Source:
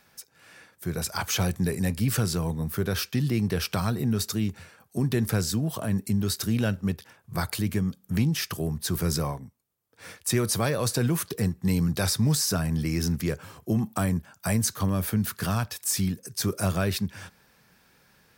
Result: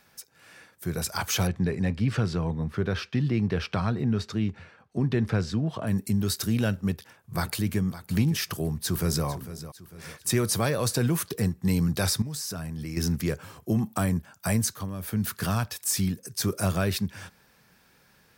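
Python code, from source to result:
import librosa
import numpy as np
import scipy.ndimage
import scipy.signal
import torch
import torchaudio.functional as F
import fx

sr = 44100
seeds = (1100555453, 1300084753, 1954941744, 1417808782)

y = fx.lowpass(x, sr, hz=3300.0, slope=12, at=(1.47, 5.87))
y = fx.echo_throw(y, sr, start_s=6.88, length_s=0.92, ms=560, feedback_pct=15, wet_db=-14.0)
y = fx.echo_throw(y, sr, start_s=8.43, length_s=0.83, ms=450, feedback_pct=45, wet_db=-13.5)
y = fx.level_steps(y, sr, step_db=17, at=(12.22, 12.97))
y = fx.edit(y, sr, fx.fade_down_up(start_s=14.59, length_s=0.68, db=-9.0, fade_s=0.28), tone=tone)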